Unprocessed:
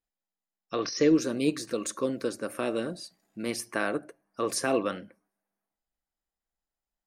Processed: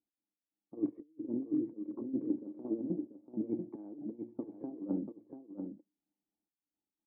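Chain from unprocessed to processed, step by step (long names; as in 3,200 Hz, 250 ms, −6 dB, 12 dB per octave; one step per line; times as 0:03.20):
high-pass filter 110 Hz 12 dB per octave
tilt shelving filter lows +7.5 dB, about 1,200 Hz
compressor whose output falls as the input rises −28 dBFS, ratio −0.5
gate pattern "x.xx..xx.xxx...x" 176 BPM −12 dB
formant resonators in series u
single-tap delay 688 ms −7 dB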